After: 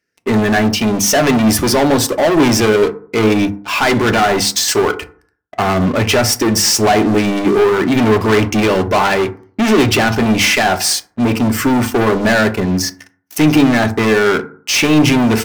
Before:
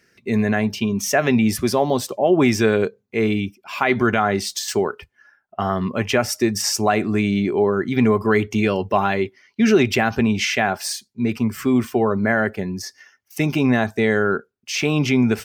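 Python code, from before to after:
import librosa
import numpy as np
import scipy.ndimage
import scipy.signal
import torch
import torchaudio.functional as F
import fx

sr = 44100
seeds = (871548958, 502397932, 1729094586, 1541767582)

y = fx.leveller(x, sr, passes=5)
y = fx.hum_notches(y, sr, base_hz=50, count=4)
y = fx.rev_fdn(y, sr, rt60_s=0.48, lf_ratio=1.1, hf_ratio=0.4, size_ms=20.0, drr_db=8.5)
y = y * 10.0 ** (-4.5 / 20.0)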